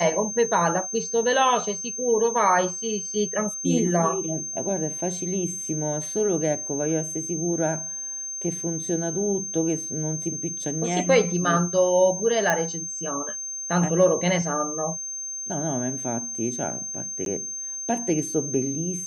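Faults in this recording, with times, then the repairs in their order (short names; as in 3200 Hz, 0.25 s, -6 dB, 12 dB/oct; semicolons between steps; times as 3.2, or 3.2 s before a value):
tone 6300 Hz -30 dBFS
12.5 pop -8 dBFS
17.25–17.26 gap 12 ms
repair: de-click; notch 6300 Hz, Q 30; interpolate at 17.25, 12 ms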